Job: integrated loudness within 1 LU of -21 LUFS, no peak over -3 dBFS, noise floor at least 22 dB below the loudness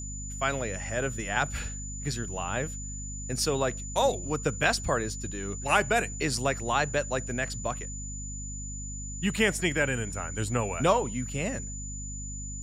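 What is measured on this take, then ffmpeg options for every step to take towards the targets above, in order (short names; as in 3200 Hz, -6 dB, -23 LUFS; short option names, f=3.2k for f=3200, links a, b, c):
hum 50 Hz; harmonics up to 250 Hz; hum level -36 dBFS; steady tone 7000 Hz; tone level -39 dBFS; loudness -29.5 LUFS; peak -9.0 dBFS; loudness target -21.0 LUFS
-> -af "bandreject=f=50:t=h:w=6,bandreject=f=100:t=h:w=6,bandreject=f=150:t=h:w=6,bandreject=f=200:t=h:w=6,bandreject=f=250:t=h:w=6"
-af "bandreject=f=7k:w=30"
-af "volume=8.5dB,alimiter=limit=-3dB:level=0:latency=1"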